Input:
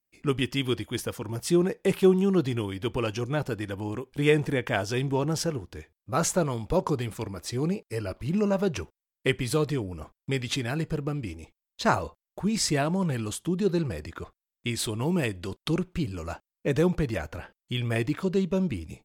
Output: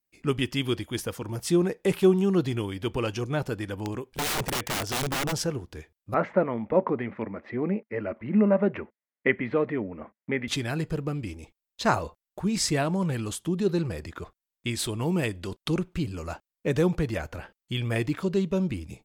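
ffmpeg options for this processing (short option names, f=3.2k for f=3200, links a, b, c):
-filter_complex "[0:a]asplit=3[a][b][c];[a]afade=t=out:st=3.74:d=0.02[d];[b]aeval=exprs='(mod(15*val(0)+1,2)-1)/15':c=same,afade=t=in:st=3.74:d=0.02,afade=t=out:st=5.31:d=0.02[e];[c]afade=t=in:st=5.31:d=0.02[f];[d][e][f]amix=inputs=3:normalize=0,asettb=1/sr,asplit=3[g][h][i];[g]atrim=end=6.144[j];[h]atrim=start=6.14:end=10.48,asetpts=PTS-STARTPTS,afade=t=in:d=0.004:c=qsin,afade=t=out:st=4.336:d=0.004:c=qsin,highpass=150,equalizer=f=150:t=q:w=4:g=-8,equalizer=f=220:t=q:w=4:g=9,equalizer=f=580:t=q:w=4:g=5,equalizer=f=2k:t=q:w=4:g=9,lowpass=f=2.2k:w=0.5412,lowpass=f=2.2k:w=1.3066[k];[i]atrim=start=10.476[l];[j][k]acrossfade=d=0.004:c1=hsin:c2=qsin[m];[m][l]acrossfade=d=0.004:c1=qsin:c2=hsin"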